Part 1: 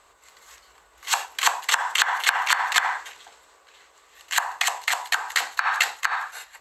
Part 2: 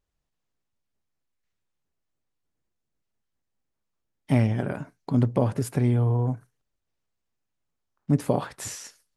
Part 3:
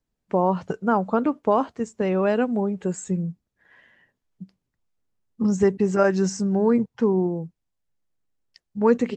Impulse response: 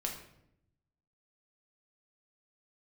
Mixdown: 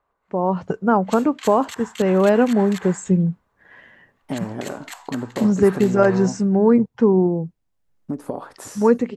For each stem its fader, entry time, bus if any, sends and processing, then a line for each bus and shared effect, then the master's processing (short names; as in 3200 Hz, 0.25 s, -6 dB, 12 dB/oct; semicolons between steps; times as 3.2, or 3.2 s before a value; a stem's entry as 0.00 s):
-13.0 dB, 0.00 s, no send, low-pass opened by the level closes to 1200 Hz, open at -20 dBFS; limiter -11.5 dBFS, peak gain reduction 8 dB
-7.0 dB, 0.00 s, no send, gate with hold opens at -51 dBFS; band shelf 580 Hz +12 dB 3 oct; compressor 6:1, threshold -17 dBFS, peak gain reduction 10.5 dB
-4.0 dB, 0.00 s, no send, high shelf 2900 Hz -11.5 dB; AGC gain up to 15 dB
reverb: off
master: high shelf 5800 Hz +6.5 dB